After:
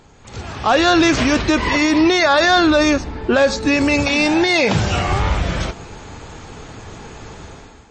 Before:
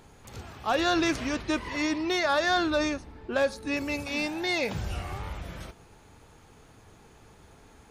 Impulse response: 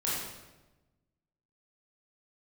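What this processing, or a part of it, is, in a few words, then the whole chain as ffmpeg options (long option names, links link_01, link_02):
low-bitrate web radio: -filter_complex "[0:a]asettb=1/sr,asplit=3[link_01][link_02][link_03];[link_01]atrim=end=4.494[link_04];[link_02]atrim=start=4.49:end=5.08,asetpts=PTS-STARTPTS,afade=type=in:duration=0.004:curve=qsin,afade=type=out:start_time=0.586:duration=0.004:curve=qsin,highpass=100[link_05];[link_03]atrim=start=5.076[link_06];[link_04][link_05]acrossfade=duration=0.004:curve1=hsin:curve2=qsin[link_07];[link_07][link_06]acrossfade=duration=0.004:curve1=qsin:curve2=hsin,dynaudnorm=framelen=140:gausssize=7:maxgain=13.5dB,alimiter=limit=-12.5dB:level=0:latency=1:release=35,volume=6dB" -ar 22050 -c:a libmp3lame -b:a 32k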